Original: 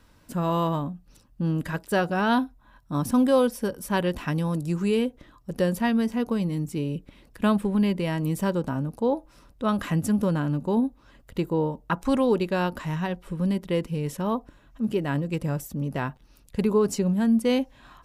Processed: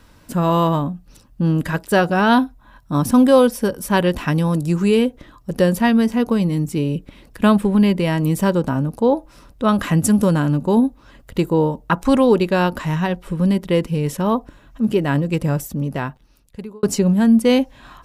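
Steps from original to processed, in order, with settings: 9.95–11.80 s: dynamic bell 8.7 kHz, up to +7 dB, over -53 dBFS, Q 0.78; 15.59–16.83 s: fade out; trim +8 dB

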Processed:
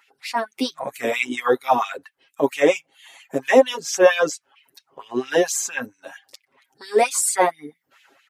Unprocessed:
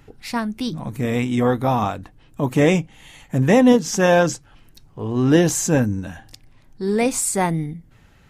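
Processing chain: reverb removal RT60 0.6 s; comb 7.4 ms, depth 65%; level rider; LFO high-pass sine 4.4 Hz 370–2800 Hz; trim -5 dB

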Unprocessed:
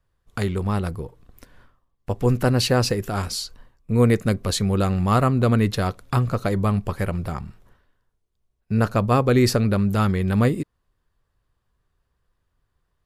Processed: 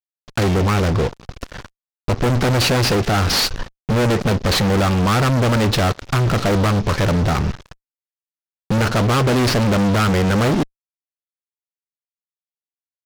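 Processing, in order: CVSD coder 32 kbps; in parallel at +2 dB: compression 12:1, threshold -31 dBFS, peak gain reduction 19.5 dB; on the sum: fuzz box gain 33 dB, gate -41 dBFS; trim -1.5 dB

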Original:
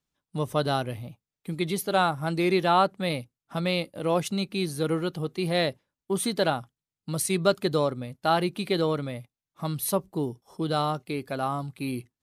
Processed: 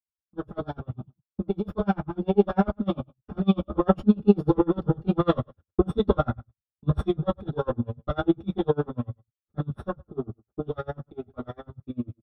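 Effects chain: comb filter that takes the minimum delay 0.45 ms; Doppler pass-by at 5.12 s, 23 m/s, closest 11 m; RIAA curve playback; gate -51 dBFS, range -27 dB; bass shelf 120 Hz -4 dB; compression 5:1, threshold -33 dBFS, peak gain reduction 12.5 dB; echo from a far wall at 20 m, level -26 dB; reverberation, pre-delay 3 ms, DRR -9 dB; logarithmic tremolo 10 Hz, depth 33 dB

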